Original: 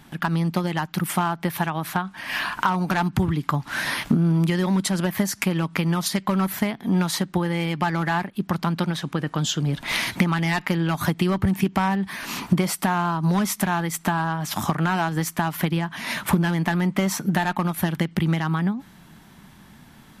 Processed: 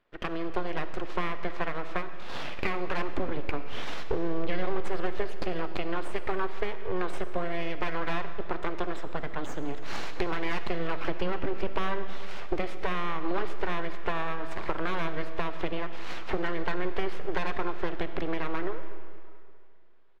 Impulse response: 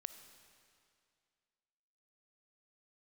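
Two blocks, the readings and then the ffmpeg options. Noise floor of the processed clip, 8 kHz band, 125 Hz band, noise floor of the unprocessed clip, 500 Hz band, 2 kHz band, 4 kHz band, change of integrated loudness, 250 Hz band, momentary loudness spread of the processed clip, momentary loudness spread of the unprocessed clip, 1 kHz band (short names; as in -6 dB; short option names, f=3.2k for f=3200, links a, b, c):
-36 dBFS, -24.0 dB, -17.5 dB, -50 dBFS, -2.5 dB, -8.0 dB, -11.5 dB, -10.5 dB, -13.5 dB, 5 LU, 4 LU, -8.5 dB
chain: -filter_complex "[0:a]aresample=11025,aresample=44100,aeval=exprs='abs(val(0))':c=same,agate=range=-15dB:threshold=-36dB:ratio=16:detection=peak,bass=f=250:g=-6,treble=f=4k:g=-15[a];[1:a]atrim=start_sample=2205[b];[a][b]afir=irnorm=-1:irlink=0"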